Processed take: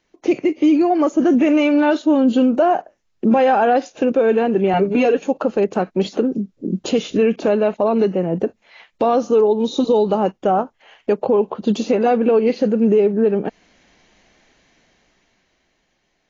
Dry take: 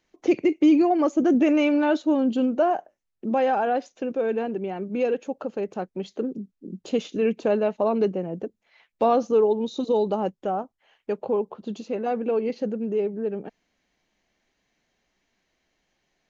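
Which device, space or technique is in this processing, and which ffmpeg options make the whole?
low-bitrate web radio: -filter_complex "[0:a]asettb=1/sr,asplit=3[link_01][link_02][link_03];[link_01]atrim=end=4.734[link_04];[link_02]atrim=start=4.73:end=5.21,asetpts=PTS-STARTPTS,afade=type=in:duration=0.004:curve=qsin,afade=type=out:start_time=0.476:duration=0.004:curve=qsin,aecho=1:1:7:1,atrim=end_sample=21168[link_05];[link_03]atrim=start=5.206[link_06];[link_04][link_05]acrossfade=duration=0.004:curve1=hsin:curve2=qsin[link_07];[link_07][link_06]acrossfade=duration=0.004:curve1=qsin:curve2=hsin,dynaudnorm=framelen=200:gausssize=17:maxgain=14.5dB,alimiter=limit=-12dB:level=0:latency=1:release=449,volume=4.5dB" -ar 16000 -c:a aac -b:a 24k

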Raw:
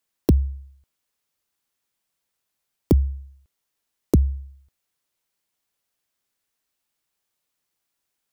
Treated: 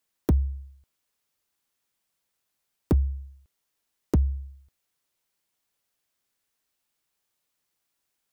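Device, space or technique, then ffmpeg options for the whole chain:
limiter into clipper: -af "alimiter=limit=-10.5dB:level=0:latency=1:release=321,asoftclip=type=hard:threshold=-15.5dB"

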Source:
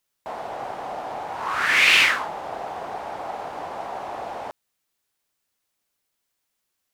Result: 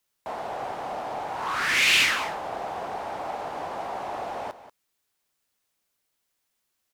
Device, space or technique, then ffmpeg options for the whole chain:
one-band saturation: -filter_complex "[0:a]acrossover=split=350|3000[link_01][link_02][link_03];[link_02]asoftclip=type=tanh:threshold=-23.5dB[link_04];[link_01][link_04][link_03]amix=inputs=3:normalize=0,aecho=1:1:186:0.2"

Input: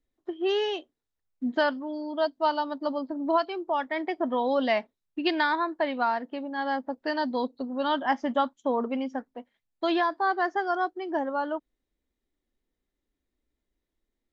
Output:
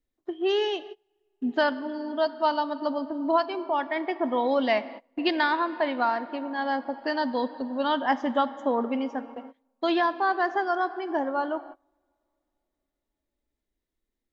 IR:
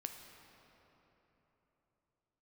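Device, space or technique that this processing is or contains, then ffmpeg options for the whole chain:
keyed gated reverb: -filter_complex "[0:a]asplit=3[link_01][link_02][link_03];[1:a]atrim=start_sample=2205[link_04];[link_02][link_04]afir=irnorm=-1:irlink=0[link_05];[link_03]apad=whole_len=631914[link_06];[link_05][link_06]sidechaingate=range=-27dB:threshold=-50dB:ratio=16:detection=peak,volume=-2dB[link_07];[link_01][link_07]amix=inputs=2:normalize=0,asettb=1/sr,asplit=3[link_08][link_09][link_10];[link_08]atrim=end=3.644[link_11];[link_09]atrim=start=3.64:end=4.21,asetpts=PTS-STARTPTS,afade=type=in:duration=0.004:curve=qsin,afade=type=out:start_time=0.566:duration=0.004:curve=qsin,lowpass=5300[link_12];[link_10]atrim=start=4.206[link_13];[link_11][link_12]acrossfade=duration=0.004:curve1=hsin:curve2=qsin[link_14];[link_14][link_13]acrossfade=duration=0.004:curve1=qsin:curve2=hsin,volume=-2.5dB"

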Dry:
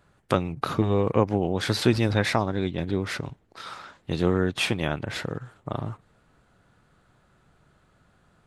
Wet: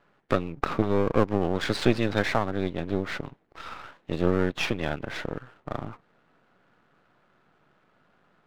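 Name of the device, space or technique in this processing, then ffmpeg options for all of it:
crystal radio: -filter_complex "[0:a]asettb=1/sr,asplit=3[link_01][link_02][link_03];[link_01]atrim=end=1.324[link_04];[link_02]atrim=start=1.32:end=2.26,asetpts=PTS-STARTPTS,afade=type=in:duration=0.004:curve=qsin,afade=type=out:start_time=0.936:duration=0.004:curve=qsin,highshelf=frequency=3600:gain=6.5[link_05];[link_03]atrim=start=2.256[link_06];[link_04][link_05]acrossfade=duration=0.004:curve1=hsin:curve2=qsin[link_07];[link_07][link_06]acrossfade=duration=0.004:curve1=qsin:curve2=hsin,highpass=210,lowpass=2900,aeval=exprs='if(lt(val(0),0),0.251*val(0),val(0))':channel_layout=same,volume=3.5dB"

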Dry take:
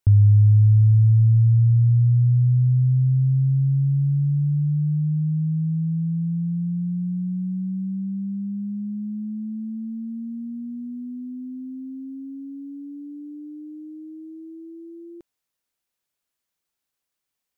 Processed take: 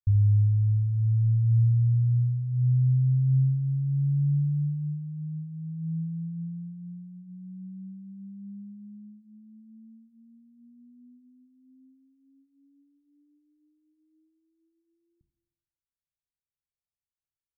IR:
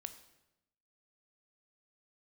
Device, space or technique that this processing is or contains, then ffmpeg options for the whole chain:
club heard from the street: -filter_complex "[0:a]alimiter=limit=-12.5dB:level=0:latency=1,lowpass=frequency=140:width=0.5412,lowpass=frequency=140:width=1.3066[link_01];[1:a]atrim=start_sample=2205[link_02];[link_01][link_02]afir=irnorm=-1:irlink=0"

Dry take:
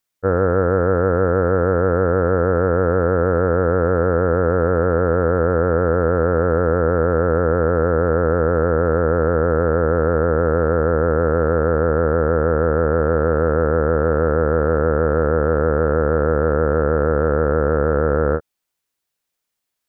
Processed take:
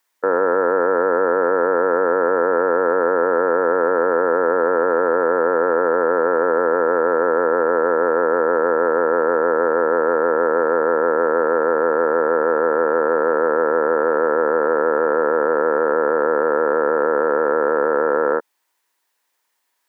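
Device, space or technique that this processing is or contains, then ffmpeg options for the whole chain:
laptop speaker: -af "highpass=frequency=280:width=0.5412,highpass=frequency=280:width=1.3066,equalizer=frequency=950:width_type=o:width=0.38:gain=11,equalizer=frequency=1800:width_type=o:width=0.42:gain=7,alimiter=limit=-14.5dB:level=0:latency=1:release=21,volume=7dB"

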